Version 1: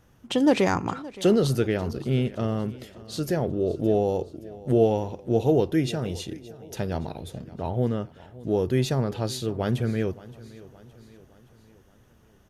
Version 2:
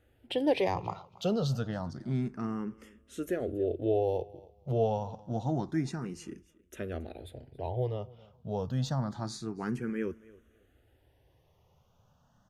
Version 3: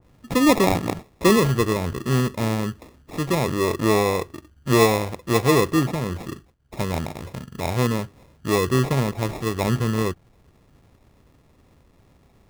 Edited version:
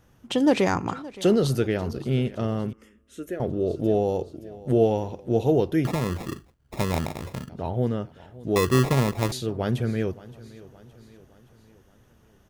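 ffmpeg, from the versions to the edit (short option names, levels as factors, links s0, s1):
-filter_complex "[2:a]asplit=2[s0][s1];[0:a]asplit=4[s2][s3][s4][s5];[s2]atrim=end=2.732[s6];[1:a]atrim=start=2.728:end=3.402[s7];[s3]atrim=start=3.398:end=5.852[s8];[s0]atrim=start=5.848:end=7.492[s9];[s4]atrim=start=7.488:end=8.562[s10];[s1]atrim=start=8.558:end=9.322[s11];[s5]atrim=start=9.318[s12];[s6][s7]acrossfade=d=0.004:c1=hsin:c2=hsin[s13];[s13][s8]acrossfade=d=0.004:c1=hsin:c2=hsin[s14];[s14][s9]acrossfade=d=0.004:c1=hsin:c2=hsin[s15];[s15][s10]acrossfade=d=0.004:c1=hsin:c2=hsin[s16];[s16][s11]acrossfade=d=0.004:c1=hsin:c2=hsin[s17];[s17][s12]acrossfade=d=0.004:c1=hsin:c2=hsin"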